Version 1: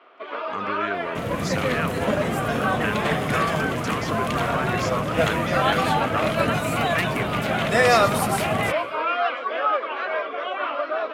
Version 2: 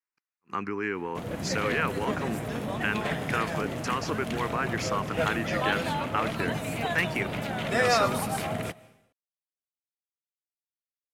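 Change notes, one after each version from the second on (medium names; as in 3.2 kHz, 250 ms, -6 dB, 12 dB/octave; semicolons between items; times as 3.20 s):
first sound: muted; second sound -6.5 dB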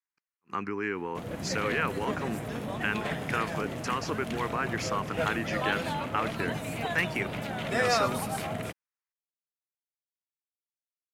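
reverb: off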